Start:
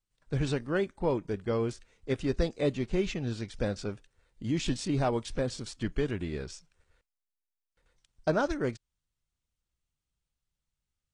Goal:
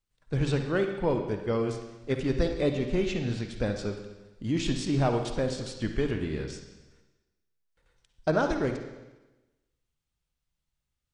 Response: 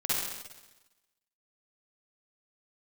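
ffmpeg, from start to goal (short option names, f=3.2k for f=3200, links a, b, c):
-filter_complex "[0:a]asplit=2[a][b];[b]bass=f=250:g=0,treble=f=4k:g=5[c];[1:a]atrim=start_sample=2205,lowpass=4.3k[d];[c][d]afir=irnorm=-1:irlink=0,volume=-12.5dB[e];[a][e]amix=inputs=2:normalize=0"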